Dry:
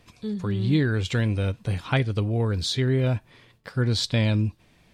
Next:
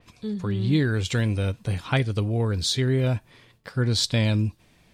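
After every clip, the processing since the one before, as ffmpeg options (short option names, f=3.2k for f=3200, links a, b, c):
-af "adynamicequalizer=threshold=0.00794:dfrequency=4900:dqfactor=0.7:tfrequency=4900:tqfactor=0.7:attack=5:release=100:ratio=0.375:range=3.5:mode=boostabove:tftype=highshelf"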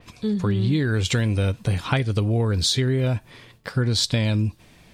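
-af "acompressor=threshold=-25dB:ratio=6,volume=7dB"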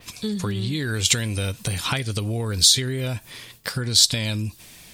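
-af "acompressor=threshold=-22dB:ratio=6,crystalizer=i=5.5:c=0,volume=-1dB"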